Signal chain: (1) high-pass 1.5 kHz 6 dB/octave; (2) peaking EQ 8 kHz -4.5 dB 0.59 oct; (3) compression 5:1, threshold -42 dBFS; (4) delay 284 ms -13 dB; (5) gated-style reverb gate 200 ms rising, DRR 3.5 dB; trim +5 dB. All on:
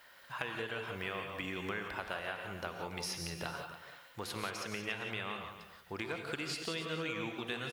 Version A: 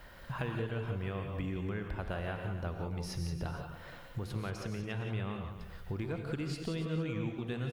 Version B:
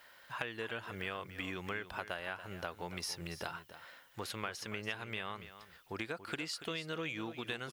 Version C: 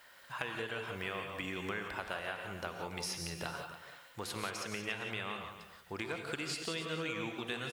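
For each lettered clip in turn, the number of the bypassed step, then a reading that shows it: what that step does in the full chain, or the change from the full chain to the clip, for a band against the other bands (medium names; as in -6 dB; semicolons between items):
1, 125 Hz band +16.0 dB; 5, crest factor change +1.5 dB; 2, 8 kHz band +2.0 dB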